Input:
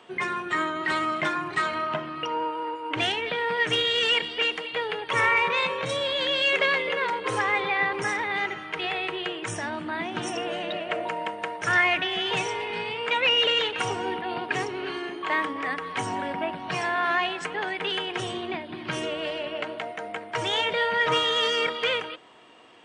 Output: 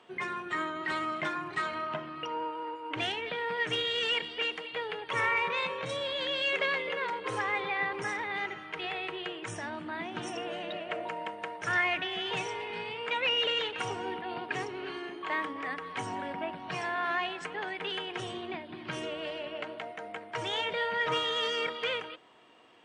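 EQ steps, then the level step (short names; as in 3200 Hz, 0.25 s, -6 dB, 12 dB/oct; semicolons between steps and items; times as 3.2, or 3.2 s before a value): high shelf 7300 Hz -4.5 dB; -6.5 dB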